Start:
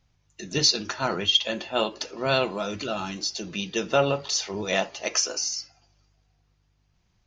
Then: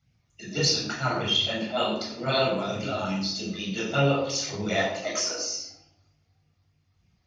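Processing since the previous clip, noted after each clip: HPF 87 Hz; phaser stages 12, 3.3 Hz, lowest notch 140–1400 Hz; reverb RT60 0.75 s, pre-delay 13 ms, DRR -3.5 dB; gain -5 dB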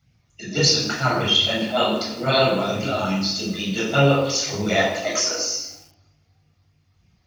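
lo-fi delay 0.158 s, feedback 35%, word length 7-bit, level -14.5 dB; gain +6 dB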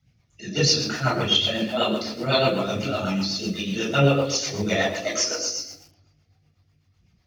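rotary speaker horn 8 Hz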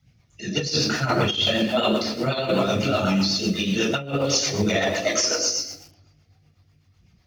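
negative-ratio compressor -23 dBFS, ratio -0.5; gain +2.5 dB

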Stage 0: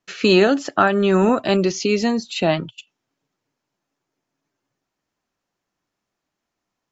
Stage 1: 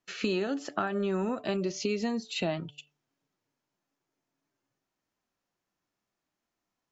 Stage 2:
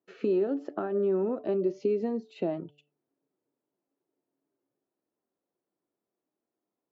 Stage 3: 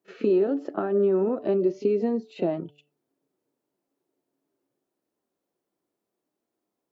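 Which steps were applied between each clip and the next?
harmonic-percussive split percussive -5 dB; compressor 8:1, threshold -23 dBFS, peak gain reduction 13 dB; de-hum 146.4 Hz, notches 5; gain -3.5 dB
band-pass 390 Hz, Q 1.7; gain +5.5 dB
reverse echo 30 ms -15.5 dB; gain +4.5 dB

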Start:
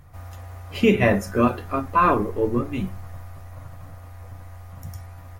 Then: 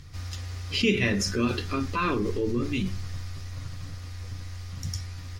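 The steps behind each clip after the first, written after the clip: EQ curve 410 Hz 0 dB, 670 Hz -14 dB, 5000 Hz +15 dB, 13000 Hz -8 dB; in parallel at +1.5 dB: negative-ratio compressor -29 dBFS, ratio -1; on the sum: gain -7 dB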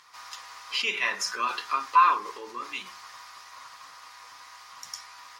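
resonant high-pass 1000 Hz, resonance Q 4.9; gain -1 dB

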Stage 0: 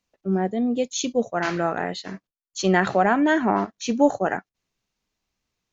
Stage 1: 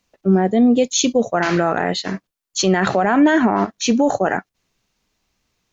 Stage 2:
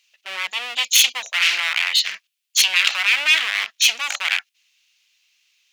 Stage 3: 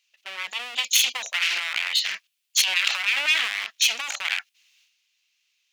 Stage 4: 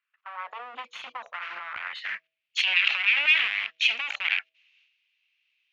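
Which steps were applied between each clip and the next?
maximiser +15.5 dB; gain -5.5 dB
one-sided fold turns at -20 dBFS; resonant high-pass 2700 Hz, resonance Q 2.7; gain +5.5 dB
transient shaper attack +6 dB, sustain +10 dB; gain -8.5 dB
high-pass sweep 1500 Hz -> 87 Hz, 0.13–1.16; de-hum 162.2 Hz, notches 4; low-pass sweep 1200 Hz -> 2600 Hz, 1.63–2.54; gain -5.5 dB

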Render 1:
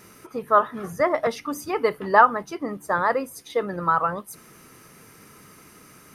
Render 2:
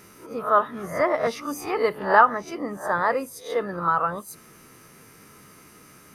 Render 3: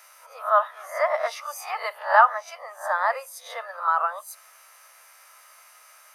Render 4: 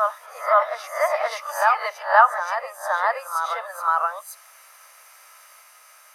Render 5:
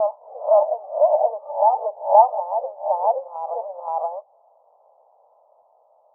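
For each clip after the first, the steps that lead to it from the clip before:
spectral swells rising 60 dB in 0.34 s; gain -2 dB
steep high-pass 570 Hz 72 dB/oct
reverse echo 0.524 s -4.5 dB; gain +1.5 dB
steep low-pass 880 Hz 72 dB/oct; gain +6.5 dB

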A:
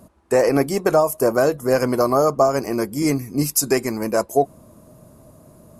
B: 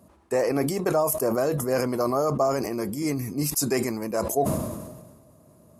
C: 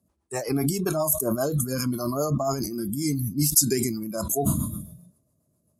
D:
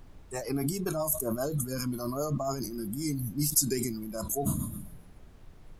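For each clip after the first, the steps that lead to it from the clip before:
HPF 58 Hz; notch 1500 Hz, Q 20; sustainer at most 42 dB/s; gain -7.5 dB
tone controls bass +6 dB, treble +10 dB; rotary speaker horn 7.5 Hz; spectral noise reduction 18 dB
added noise brown -43 dBFS; gain -6 dB

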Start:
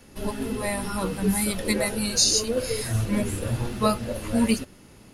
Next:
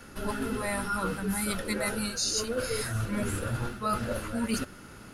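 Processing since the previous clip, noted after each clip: bell 1400 Hz +13.5 dB 0.42 oct; reverse; compressor 6:1, threshold -29 dBFS, peak gain reduction 15.5 dB; reverse; gain +1.5 dB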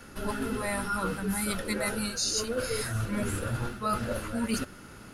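nothing audible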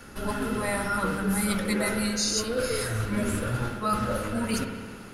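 spring tank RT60 1.8 s, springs 57 ms, chirp 60 ms, DRR 4.5 dB; gain +2 dB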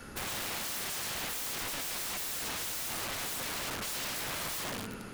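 wrapped overs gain 31 dB; gain -1 dB

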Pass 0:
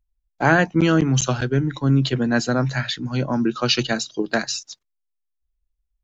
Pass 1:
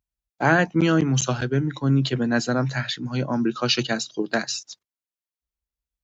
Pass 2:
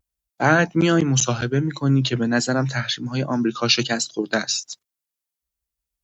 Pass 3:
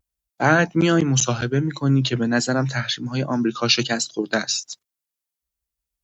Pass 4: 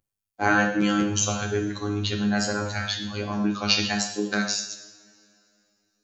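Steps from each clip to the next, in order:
HPF 83 Hz; gain -2 dB
high shelf 6100 Hz +8.5 dB; vibrato 1.3 Hz 65 cents; gain +1.5 dB
nothing audible
robotiser 103 Hz; two-slope reverb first 0.73 s, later 2.8 s, from -20 dB, DRR 2.5 dB; gain -2.5 dB

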